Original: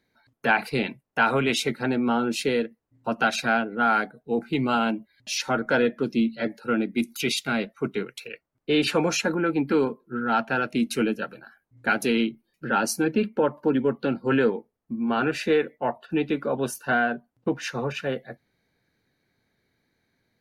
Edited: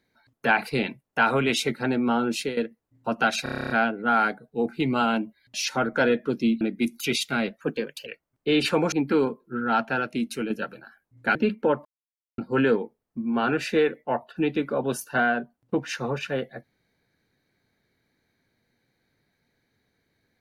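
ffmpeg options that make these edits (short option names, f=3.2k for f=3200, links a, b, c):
-filter_complex "[0:a]asplit=19[a][b][c][d][e][f][g][h][i][j][k][l][m][n][o][p][q][r][s];[a]atrim=end=2.57,asetpts=PTS-STARTPTS,afade=t=out:st=2.3:d=0.27:c=qsin:silence=0.199526[t];[b]atrim=start=2.57:end=3.462,asetpts=PTS-STARTPTS,afade=t=in:d=0.004:c=hsin:silence=0.199526[u];[c]atrim=start=3.428:end=3.462[v];[d]atrim=start=3.428:end=3.462[w];[e]atrim=start=3.428:end=3.462[x];[f]atrim=start=3.428:end=3.462[y];[g]atrim=start=3.428:end=3.462[z];[h]atrim=start=3.428:end=3.462[aa];[i]atrim=start=3.428:end=3.462[ab];[j]atrim=start=3.428:end=3.462[ac];[k]atrim=start=3.428:end=6.342[ad];[l]atrim=start=6.768:end=7.774[ae];[m]atrim=start=7.77:end=8.28,asetpts=PTS-STARTPTS,asetrate=49833,aresample=44100[af];[n]atrim=start=8.276:end=9.142[ag];[o]atrim=start=9.518:end=11.1,asetpts=PTS-STARTPTS,afade=t=out:st=0.882:d=0.7:silence=0.446684[ah];[p]atrim=start=11.1:end=11.952,asetpts=PTS-STARTPTS,afade=t=in:d=0.004:c=hsin:silence=0.446684[ai];[q]atrim=start=13.088:end=13.59,asetpts=PTS-STARTPTS,afade=t=out:st=0.498:d=0.004:c=hsin[aj];[r]atrim=start=13.59:end=14.12,asetpts=PTS-STARTPTS,volume=0[ak];[s]atrim=start=14.12,asetpts=PTS-STARTPTS,afade=t=in:d=0.004:c=hsin[al];[t][u]concat=n=2:v=0:a=1[am];[am][v]acrossfade=d=0.004:c1=hsin:c2=hsin[an];[an][w]acrossfade=d=0.004:c1=hsin:c2=hsin[ao];[ao][x]acrossfade=d=0.004:c1=hsin:c2=hsin[ap];[ap][y]acrossfade=d=0.004:c1=hsin:c2=hsin[aq];[aq][z]acrossfade=d=0.004:c1=hsin:c2=hsin[ar];[ar][aa]acrossfade=d=0.004:c1=hsin:c2=hsin[as];[as][ab]acrossfade=d=0.004:c1=hsin:c2=hsin[at];[at][ac]acrossfade=d=0.004:c1=hsin:c2=hsin[au];[au][ad]acrossfade=d=0.004:c1=hsin:c2=hsin[av];[av][ae]acrossfade=d=0.004:c1=hsin:c2=hsin[aw];[aw][af]acrossfade=d=0.004:c1=hsin:c2=hsin[ax];[ax][ag]acrossfade=d=0.004:c1=hsin:c2=hsin[ay];[ah][ai]concat=n=2:v=0:a=1[az];[ay][az]acrossfade=d=0.004:c1=hsin:c2=hsin[ba];[aj][ak][al]concat=n=3:v=0:a=1[bb];[ba][bb]acrossfade=d=0.004:c1=hsin:c2=hsin"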